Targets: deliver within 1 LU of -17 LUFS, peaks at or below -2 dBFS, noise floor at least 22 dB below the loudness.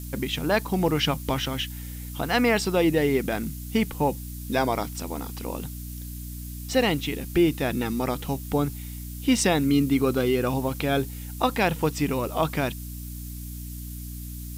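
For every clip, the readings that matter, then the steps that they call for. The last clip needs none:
hum 60 Hz; highest harmonic 300 Hz; hum level -34 dBFS; noise floor -36 dBFS; noise floor target -48 dBFS; loudness -25.5 LUFS; peak level -8.0 dBFS; loudness target -17.0 LUFS
-> de-hum 60 Hz, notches 5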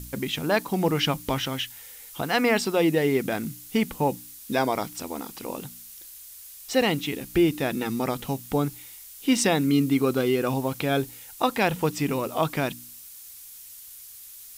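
hum not found; noise floor -45 dBFS; noise floor target -48 dBFS
-> noise print and reduce 6 dB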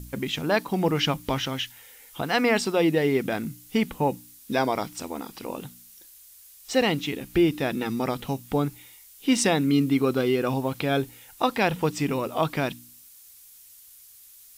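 noise floor -51 dBFS; loudness -25.5 LUFS; peak level -9.0 dBFS; loudness target -17.0 LUFS
-> trim +8.5 dB; peak limiter -2 dBFS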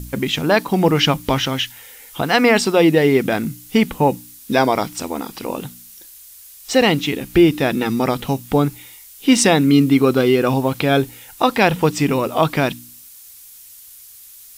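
loudness -17.5 LUFS; peak level -2.0 dBFS; noise floor -42 dBFS

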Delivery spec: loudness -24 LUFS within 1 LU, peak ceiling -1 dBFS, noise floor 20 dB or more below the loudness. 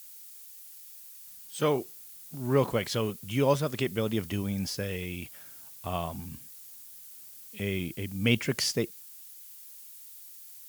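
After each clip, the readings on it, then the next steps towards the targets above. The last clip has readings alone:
noise floor -49 dBFS; noise floor target -51 dBFS; loudness -30.5 LUFS; peak level -9.5 dBFS; loudness target -24.0 LUFS
-> noise reduction 6 dB, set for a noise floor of -49 dBFS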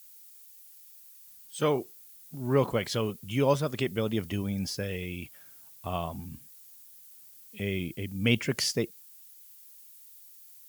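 noise floor -53 dBFS; loudness -30.5 LUFS; peak level -9.5 dBFS; loudness target -24.0 LUFS
-> trim +6.5 dB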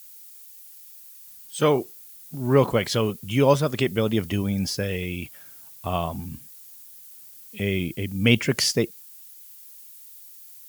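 loudness -24.0 LUFS; peak level -3.0 dBFS; noise floor -46 dBFS

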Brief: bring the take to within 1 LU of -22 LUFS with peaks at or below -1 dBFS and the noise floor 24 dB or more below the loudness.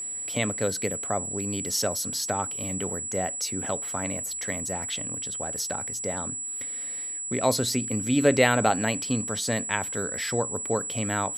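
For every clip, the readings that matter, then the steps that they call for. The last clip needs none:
steady tone 7.8 kHz; tone level -31 dBFS; loudness -27.0 LUFS; peak level -4.5 dBFS; loudness target -22.0 LUFS
-> band-stop 7.8 kHz, Q 30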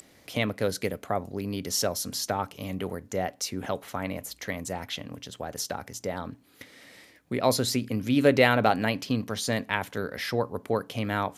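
steady tone not found; loudness -28.5 LUFS; peak level -4.5 dBFS; loudness target -22.0 LUFS
-> trim +6.5 dB; peak limiter -1 dBFS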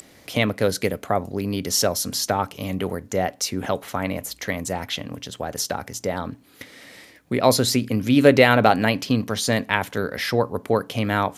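loudness -22.5 LUFS; peak level -1.0 dBFS; noise floor -51 dBFS

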